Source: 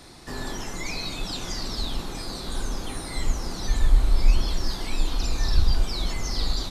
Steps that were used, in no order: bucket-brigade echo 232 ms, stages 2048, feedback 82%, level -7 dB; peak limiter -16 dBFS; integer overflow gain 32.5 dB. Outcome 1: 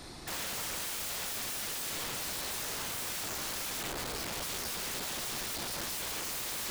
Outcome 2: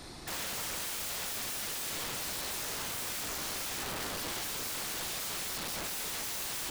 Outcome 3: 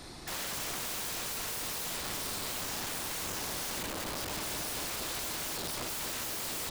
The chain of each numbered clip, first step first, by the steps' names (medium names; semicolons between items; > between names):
bucket-brigade echo > peak limiter > integer overflow; peak limiter > bucket-brigade echo > integer overflow; peak limiter > integer overflow > bucket-brigade echo